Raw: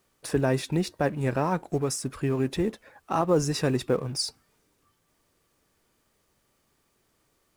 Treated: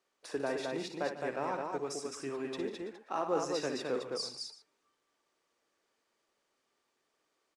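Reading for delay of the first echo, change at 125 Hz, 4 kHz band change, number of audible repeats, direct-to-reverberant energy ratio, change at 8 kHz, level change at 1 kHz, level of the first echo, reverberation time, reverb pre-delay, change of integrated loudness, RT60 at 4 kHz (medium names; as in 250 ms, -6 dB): 58 ms, -22.5 dB, -7.0 dB, 5, no reverb, -10.5 dB, -6.5 dB, -8.5 dB, no reverb, no reverb, -9.5 dB, no reverb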